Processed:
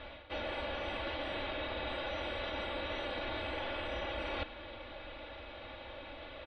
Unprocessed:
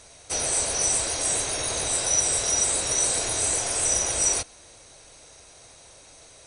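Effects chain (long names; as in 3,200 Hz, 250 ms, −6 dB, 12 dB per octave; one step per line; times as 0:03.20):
elliptic low-pass filter 3,400 Hz, stop band 50 dB
comb filter 3.5 ms, depth 74%
reversed playback
downward compressor 10 to 1, threshold −41 dBFS, peak gain reduction 13.5 dB
reversed playback
level +5.5 dB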